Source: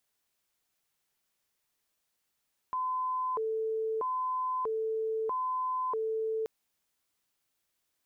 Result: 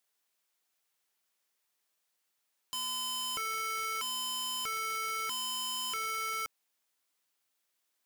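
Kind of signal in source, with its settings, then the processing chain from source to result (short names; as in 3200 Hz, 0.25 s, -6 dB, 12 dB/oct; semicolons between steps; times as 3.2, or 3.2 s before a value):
siren hi-lo 442–1020 Hz 0.78/s sine -29 dBFS 3.73 s
HPF 430 Hz 6 dB/oct; wrapped overs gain 32.5 dB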